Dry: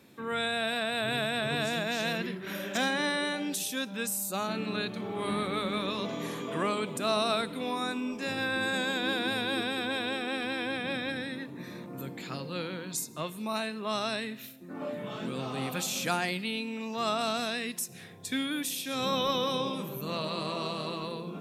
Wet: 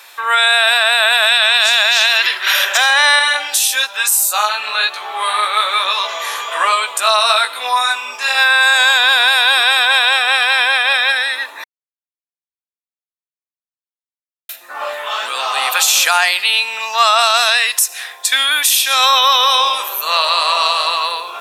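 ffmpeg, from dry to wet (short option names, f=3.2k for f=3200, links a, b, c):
-filter_complex "[0:a]asettb=1/sr,asplit=3[a][b][c];[a]atrim=end=1.274[d];[b]atrim=start=1.27:end=2.65,asetpts=PTS-STARTPTS,afade=t=in:d=0.004:c=qsin,afade=t=out:st=1.376:d=0.004:c=qsin,equalizer=f=3.8k:w=0.63:g=8[e];[c]atrim=start=2.646[f];[d][e]acrossfade=d=0.004:c1=hsin:c2=qsin[g];[g][f]acrossfade=d=0.004:c1=qsin:c2=hsin,asettb=1/sr,asplit=3[h][i][j];[h]atrim=end=3.194[k];[i]atrim=start=3.19:end=8.35,asetpts=PTS-STARTPTS,afade=t=in:d=0.004:c=qsin,afade=t=out:st=5.156:d=0.004:c=qsin,flanger=delay=16:depth=3.3:speed=1.1[l];[j]atrim=start=8.346[m];[k][l]acrossfade=d=0.004:c1=hsin:c2=qsin[n];[n][m]acrossfade=d=0.004:c1=qsin:c2=hsin,asplit=3[o][p][q];[o]atrim=end=11.64,asetpts=PTS-STARTPTS,afade=t=out:st=11.636:d=0.004:c=hsin[r];[p]atrim=start=11.64:end=14.49,asetpts=PTS-STARTPTS,volume=0[s];[q]atrim=start=14.49,asetpts=PTS-STARTPTS,afade=t=in:d=0.004:c=hsin[t];[r][s][t]concat=n=3:v=0:a=1,highpass=f=830:w=0.5412,highpass=f=830:w=1.3066,bandreject=f=2.2k:w=18,alimiter=level_in=24dB:limit=-1dB:release=50:level=0:latency=1,volume=-1dB"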